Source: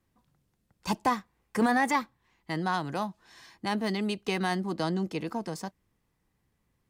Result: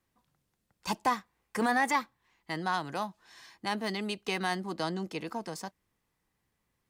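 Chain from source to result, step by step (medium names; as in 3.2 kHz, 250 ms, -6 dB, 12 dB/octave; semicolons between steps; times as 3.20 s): bass shelf 410 Hz -7.5 dB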